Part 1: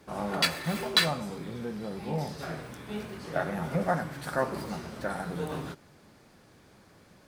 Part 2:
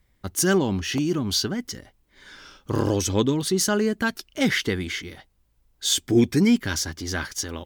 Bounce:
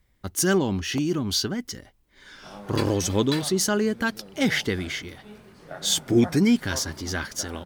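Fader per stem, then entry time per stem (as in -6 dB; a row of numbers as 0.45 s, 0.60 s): -9.0 dB, -1.0 dB; 2.35 s, 0.00 s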